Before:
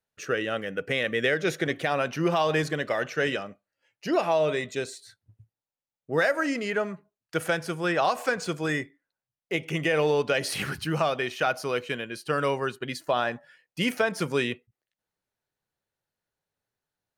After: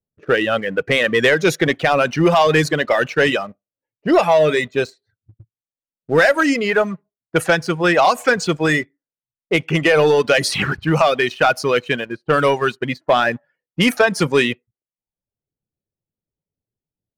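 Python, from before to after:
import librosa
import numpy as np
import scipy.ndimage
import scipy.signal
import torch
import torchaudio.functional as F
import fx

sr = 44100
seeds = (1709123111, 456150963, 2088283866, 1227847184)

y = fx.dereverb_blind(x, sr, rt60_s=0.68)
y = fx.env_lowpass(y, sr, base_hz=320.0, full_db=-24.0)
y = fx.leveller(y, sr, passes=1)
y = F.gain(torch.from_numpy(y), 8.5).numpy()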